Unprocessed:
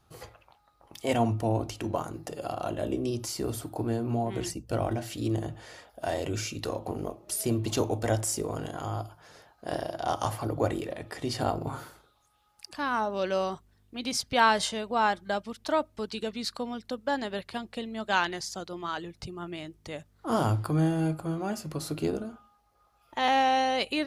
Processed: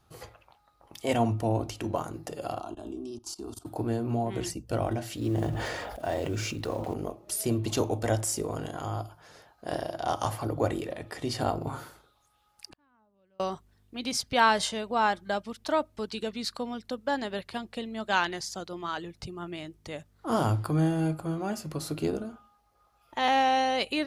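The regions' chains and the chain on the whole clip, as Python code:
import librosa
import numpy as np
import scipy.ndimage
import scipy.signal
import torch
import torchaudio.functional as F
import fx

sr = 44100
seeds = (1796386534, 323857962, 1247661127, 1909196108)

y = fx.chain(x, sr, fx.level_steps(step_db=18),
    fx.lowpass(hz=9400.0, slope=12),
    fx.fixed_phaser(hz=530.0, stages=6), at=(2.6, 3.66))
y = fx.chain(y, sr, fx.block_float(bits=5),
    fx.high_shelf(hz=3200.0, db=-9.0),
    fx.sustainer(db_per_s=23.0), at=(5.17, 6.94))
y = fx.chain(y, sr, fx.bass_treble(bass_db=11, treble_db=-13),
    fx.gate_flip(shuts_db=-37.0, range_db=-40), at=(12.7, 13.4))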